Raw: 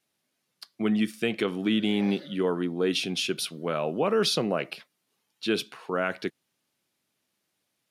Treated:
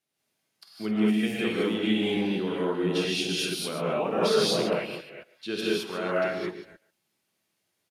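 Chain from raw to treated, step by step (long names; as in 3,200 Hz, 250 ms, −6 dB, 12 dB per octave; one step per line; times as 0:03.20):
delay that plays each chunk backwards 218 ms, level −10 dB
far-end echo of a speakerphone 140 ms, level −17 dB
reverb whose tail is shaped and stops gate 240 ms rising, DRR −7.5 dB
level −7.5 dB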